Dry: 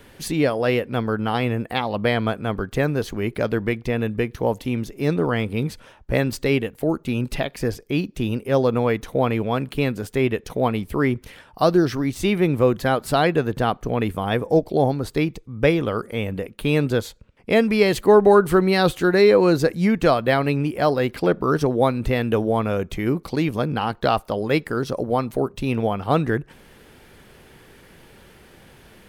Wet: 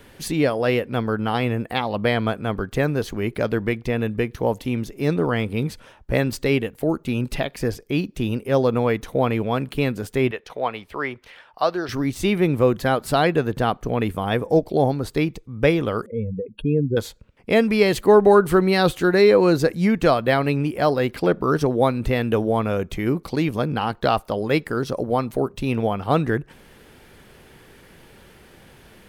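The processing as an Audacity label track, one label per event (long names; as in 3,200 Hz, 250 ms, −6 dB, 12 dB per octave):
10.310000	11.890000	three-way crossover with the lows and the highs turned down lows −16 dB, under 500 Hz, highs −14 dB, over 5,100 Hz
16.060000	16.970000	expanding power law on the bin magnitudes exponent 2.7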